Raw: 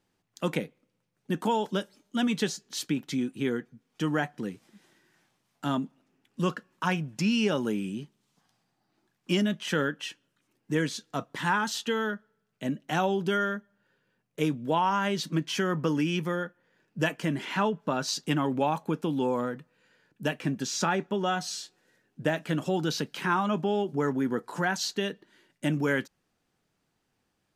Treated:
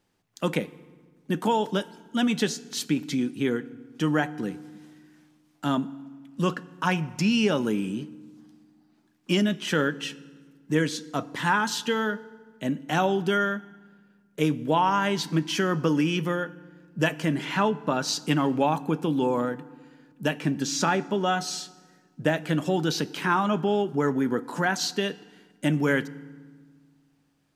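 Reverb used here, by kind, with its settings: FDN reverb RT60 1.5 s, low-frequency decay 1.55×, high-frequency decay 0.7×, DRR 17 dB; trim +3 dB

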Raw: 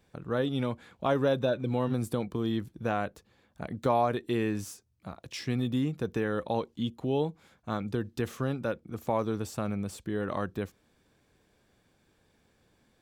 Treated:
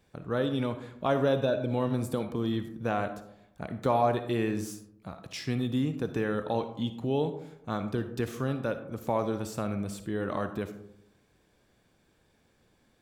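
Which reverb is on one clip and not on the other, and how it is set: algorithmic reverb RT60 0.8 s, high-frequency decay 0.35×, pre-delay 15 ms, DRR 9 dB

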